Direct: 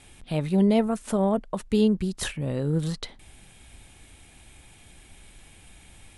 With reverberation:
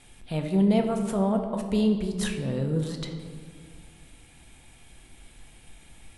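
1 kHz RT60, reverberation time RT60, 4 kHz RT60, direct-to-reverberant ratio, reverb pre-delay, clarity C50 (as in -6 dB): 1.7 s, 1.9 s, 1.0 s, 4.0 dB, 4 ms, 7.0 dB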